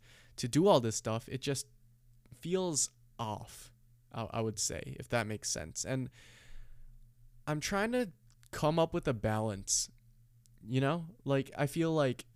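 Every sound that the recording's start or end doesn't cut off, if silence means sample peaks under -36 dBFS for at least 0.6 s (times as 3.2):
2.43–3.41
4.17–6.06
7.48–9.85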